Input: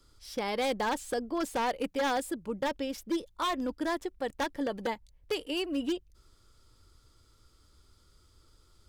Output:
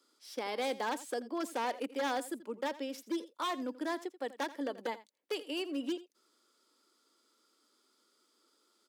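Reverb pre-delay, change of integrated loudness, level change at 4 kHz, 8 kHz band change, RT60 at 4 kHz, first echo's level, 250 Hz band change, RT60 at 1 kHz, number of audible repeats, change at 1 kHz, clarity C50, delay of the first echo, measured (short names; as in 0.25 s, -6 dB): none, -4.5 dB, -4.5 dB, -4.5 dB, none, -17.0 dB, -5.0 dB, none, 1, -4.5 dB, none, 84 ms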